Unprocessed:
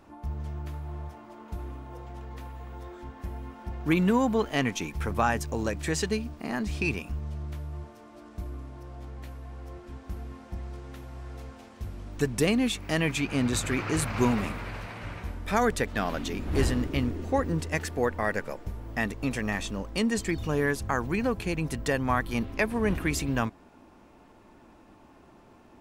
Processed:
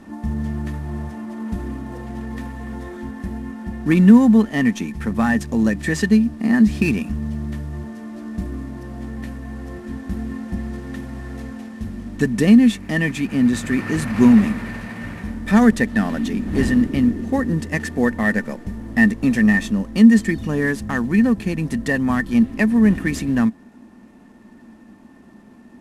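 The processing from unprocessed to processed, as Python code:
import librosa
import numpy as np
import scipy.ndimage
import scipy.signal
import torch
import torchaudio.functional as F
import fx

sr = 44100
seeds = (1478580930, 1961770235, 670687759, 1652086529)

y = fx.cvsd(x, sr, bps=64000)
y = fx.rider(y, sr, range_db=5, speed_s=2.0)
y = fx.small_body(y, sr, hz=(220.0, 1800.0), ring_ms=55, db=17)
y = y * 10.0 ** (1.5 / 20.0)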